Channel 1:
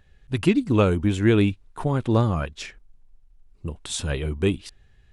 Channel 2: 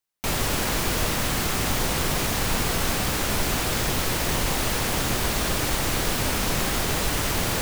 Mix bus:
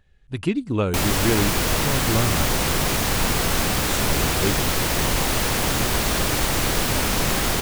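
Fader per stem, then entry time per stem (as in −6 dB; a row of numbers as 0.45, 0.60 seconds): −3.5, +3.0 decibels; 0.00, 0.70 seconds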